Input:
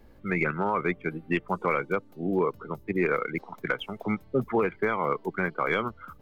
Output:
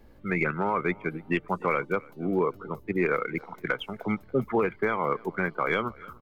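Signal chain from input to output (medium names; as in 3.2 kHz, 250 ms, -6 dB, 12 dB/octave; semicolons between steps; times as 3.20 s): feedback delay 293 ms, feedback 35%, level -24 dB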